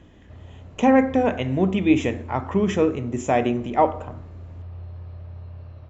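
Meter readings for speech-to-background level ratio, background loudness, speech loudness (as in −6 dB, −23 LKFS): 19.0 dB, −40.5 LKFS, −21.5 LKFS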